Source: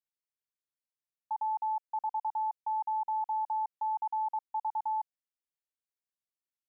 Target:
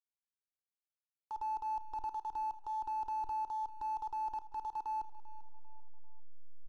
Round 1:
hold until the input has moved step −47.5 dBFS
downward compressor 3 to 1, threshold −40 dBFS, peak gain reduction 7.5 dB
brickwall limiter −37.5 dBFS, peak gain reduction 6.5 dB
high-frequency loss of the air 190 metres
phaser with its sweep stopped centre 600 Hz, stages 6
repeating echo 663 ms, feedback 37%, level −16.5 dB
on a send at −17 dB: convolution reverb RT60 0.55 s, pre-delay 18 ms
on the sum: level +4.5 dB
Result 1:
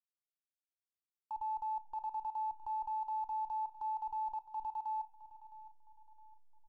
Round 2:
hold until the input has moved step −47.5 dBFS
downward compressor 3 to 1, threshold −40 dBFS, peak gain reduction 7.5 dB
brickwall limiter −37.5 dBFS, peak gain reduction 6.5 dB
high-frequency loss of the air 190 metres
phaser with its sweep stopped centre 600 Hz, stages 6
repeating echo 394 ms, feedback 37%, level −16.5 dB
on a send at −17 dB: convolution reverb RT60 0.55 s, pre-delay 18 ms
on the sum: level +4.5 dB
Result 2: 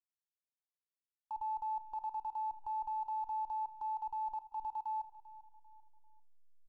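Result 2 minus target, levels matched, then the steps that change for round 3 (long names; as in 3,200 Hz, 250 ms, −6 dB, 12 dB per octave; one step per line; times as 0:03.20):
hold until the input has moved: distortion −14 dB
change: hold until the input has moved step −36 dBFS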